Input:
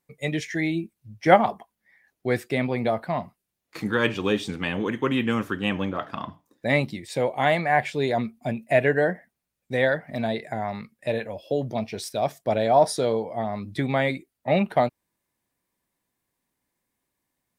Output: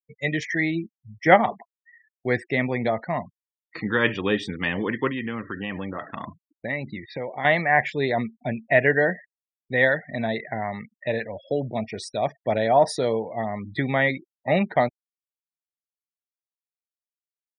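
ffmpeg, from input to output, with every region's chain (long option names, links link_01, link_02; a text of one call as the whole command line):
ffmpeg -i in.wav -filter_complex "[0:a]asettb=1/sr,asplit=3[link_01][link_02][link_03];[link_01]atrim=end=5.074[link_04];[link_02]atrim=start=5.07:end=7.45,asetpts=PTS-STARTPTS,afade=type=in:duration=0.004:curve=qsin,afade=type=out:start_time=2.376:duration=0.004:curve=qsin,lowpass=4000,acompressor=threshold=-27dB:ratio=4:attack=3.2:release=140:knee=1:detection=peak[link_05];[link_03]atrim=start=7.446[link_06];[link_04][link_05]acrossfade=duration=0.004:curve1=hsin:curve2=qsin[link_07];[link_07][link_06]acrossfade=duration=0.004:curve1=qsin:curve2=hsin,lowpass=8700,equalizer=frequency=1900:width=6.7:gain=9.5,afftfilt=real='re*gte(hypot(re,im),0.0112)':imag='im*gte(hypot(re,im),0.0112)':win_size=1024:overlap=0.75" out.wav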